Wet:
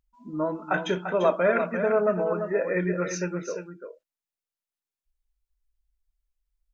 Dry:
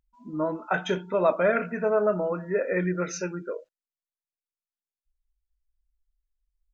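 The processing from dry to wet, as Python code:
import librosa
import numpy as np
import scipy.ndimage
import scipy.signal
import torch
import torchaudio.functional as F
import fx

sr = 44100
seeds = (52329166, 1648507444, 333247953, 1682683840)

y = x + 10.0 ** (-8.0 / 20.0) * np.pad(x, (int(344 * sr / 1000.0), 0))[:len(x)]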